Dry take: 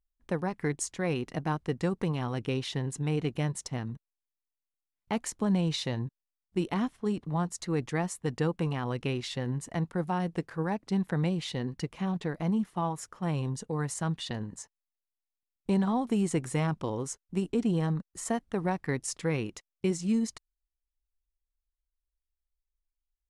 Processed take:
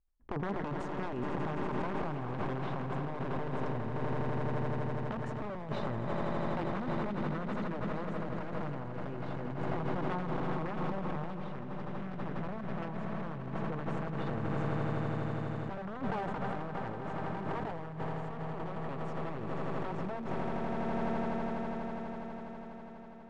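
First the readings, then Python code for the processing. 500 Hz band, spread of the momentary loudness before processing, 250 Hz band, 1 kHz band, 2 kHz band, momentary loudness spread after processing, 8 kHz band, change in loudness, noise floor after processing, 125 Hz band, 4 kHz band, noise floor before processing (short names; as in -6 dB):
-3.0 dB, 7 LU, -6.0 dB, +0.5 dB, -2.0 dB, 5 LU, under -25 dB, -5.5 dB, -43 dBFS, -5.0 dB, -12.0 dB, under -85 dBFS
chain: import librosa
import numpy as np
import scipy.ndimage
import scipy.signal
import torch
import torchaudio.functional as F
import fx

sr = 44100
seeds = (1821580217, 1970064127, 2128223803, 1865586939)

y = (np.mod(10.0 ** (23.0 / 20.0) * x + 1.0, 2.0) - 1.0) / 10.0 ** (23.0 / 20.0)
y = fx.echo_swell(y, sr, ms=82, loudest=8, wet_db=-11.5)
y = fx.over_compress(y, sr, threshold_db=-32.0, ratio=-0.5)
y = scipy.signal.sosfilt(scipy.signal.butter(2, 1300.0, 'lowpass', fs=sr, output='sos'), y)
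y = fx.sustainer(y, sr, db_per_s=22.0)
y = y * 10.0 ** (-2.5 / 20.0)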